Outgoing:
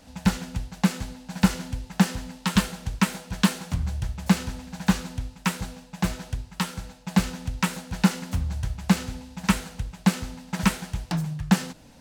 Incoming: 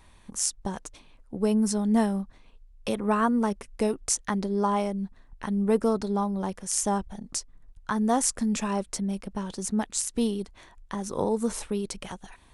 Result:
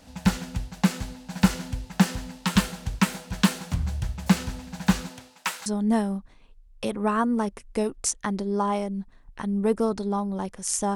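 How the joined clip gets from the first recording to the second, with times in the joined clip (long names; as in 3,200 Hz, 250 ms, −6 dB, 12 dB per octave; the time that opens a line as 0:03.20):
outgoing
0:05.08–0:05.66: high-pass filter 250 Hz → 1,000 Hz
0:05.66: continue with incoming from 0:01.70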